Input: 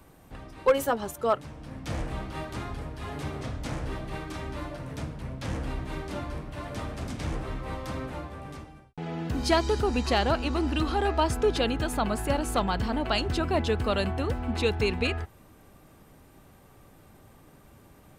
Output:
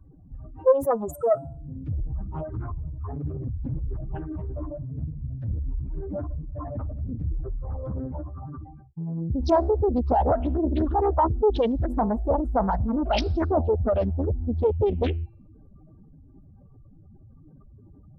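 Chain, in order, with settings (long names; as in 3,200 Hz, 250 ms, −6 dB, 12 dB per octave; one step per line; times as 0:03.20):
expanding power law on the bin magnitudes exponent 3.3
hum removal 338.9 Hz, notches 33
highs frequency-modulated by the lows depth 0.65 ms
level +4.5 dB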